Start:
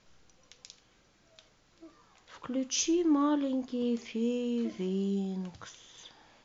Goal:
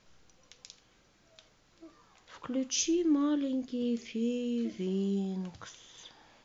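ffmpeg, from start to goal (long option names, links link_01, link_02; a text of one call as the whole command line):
ffmpeg -i in.wav -filter_complex "[0:a]asettb=1/sr,asplit=3[link_01][link_02][link_03];[link_01]atrim=end=2.724[link_04];[link_02]atrim=start=2.72:end=4.87,asetpts=PTS-STARTPTS,afade=type=in:duration=0.004:curve=qsin,afade=type=out:start_time=2.146:duration=0.004:curve=qsin,equalizer=frequency=920:width=1.5:gain=-11.5[link_05];[link_03]atrim=start=4.866[link_06];[link_04][link_05]acrossfade=duration=0.004:curve1=hsin:curve2=qsin[link_07];[link_07][link_06]acrossfade=duration=0.004:curve1=qsin:curve2=hsin" out.wav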